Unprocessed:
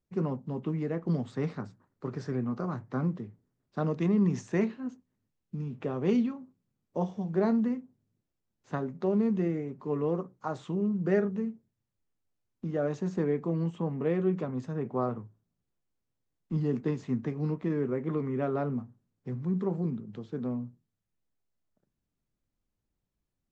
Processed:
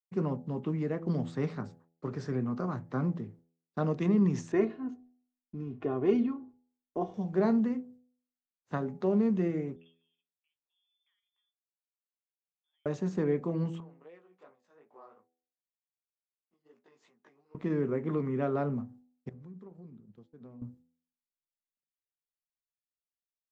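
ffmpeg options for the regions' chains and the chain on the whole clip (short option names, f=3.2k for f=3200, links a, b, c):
-filter_complex "[0:a]asettb=1/sr,asplit=3[a][b][c];[a]atrim=end=4.524[d];[b]atrim=start=4.52:end=7.14,asetpts=PTS-STARTPTS,afade=t=in:d=0.004:c=qsin,afade=t=out:st=2.616:d=0.004:c=qsin,lowpass=f=1.6k:p=1,aecho=1:1:2.8:0.68,atrim=end_sample=115542[e];[c]atrim=start=7.136[f];[d][e]acrossfade=d=0.004:c1=hsin:c2=qsin[g];[g][f]acrossfade=d=0.004:c1=qsin:c2=hsin,asettb=1/sr,asplit=3[h][i][j];[h]atrim=end=9.764[k];[i]atrim=start=9.76:end=12.86,asetpts=PTS-STARTPTS,afade=t=in:d=0.004:c=qsin,afade=t=out:st=3.096:d=0.004:c=qsin,aderivative,acompressor=threshold=-60dB:ratio=16:attack=3.2:release=140:knee=1:detection=peak,lowpass=f=3.1k:t=q:w=0.5098,lowpass=f=3.1k:t=q:w=0.6013,lowpass=f=3.1k:t=q:w=0.9,lowpass=f=3.1k:t=q:w=2.563,afreqshift=-3700[l];[j]atrim=start=12.856[m];[k][l]acrossfade=d=0.004:c1=hsin:c2=qsin[n];[n][m]acrossfade=d=0.004:c1=qsin:c2=hsin,asettb=1/sr,asplit=3[o][p][q];[o]atrim=end=13.804[r];[p]atrim=start=13.8:end=17.55,asetpts=PTS-STARTPTS,afade=t=in:d=0.004:c=qsin,afade=t=out:st=3.746:d=0.004:c=qsin,acompressor=threshold=-40dB:ratio=8:attack=3.2:release=140:knee=1:detection=peak,flanger=delay=17:depth=5:speed=2.7,highpass=600[s];[q]atrim=start=17.546[t];[r][s]acrossfade=d=0.004:c1=hsin:c2=qsin[u];[u][t]acrossfade=d=0.004:c1=qsin:c2=hsin,asettb=1/sr,asplit=3[v][w][x];[v]atrim=end=19.294[y];[w]atrim=start=19.29:end=20.62,asetpts=PTS-STARTPTS,afade=t=in:d=0.004:c=qsin,afade=t=out:st=1.326:d=0.004:c=qsin,acompressor=threshold=-40dB:ratio=8:attack=3.2:release=140:knee=1:detection=peak,agate=range=-33dB:threshold=-38dB:ratio=3:release=100:detection=peak[z];[x]atrim=start=20.616[aa];[y][z]acrossfade=d=0.004:c1=hsin:c2=qsin[ab];[ab][aa]acrossfade=d=0.004:c1=qsin:c2=hsin,agate=range=-33dB:threshold=-52dB:ratio=3:detection=peak,bandreject=f=83.02:t=h:w=4,bandreject=f=166.04:t=h:w=4,bandreject=f=249.06:t=h:w=4,bandreject=f=332.08:t=h:w=4,bandreject=f=415.1:t=h:w=4,bandreject=f=498.12:t=h:w=4,bandreject=f=581.14:t=h:w=4,bandreject=f=664.16:t=h:w=4,bandreject=f=747.18:t=h:w=4,bandreject=f=830.2:t=h:w=4"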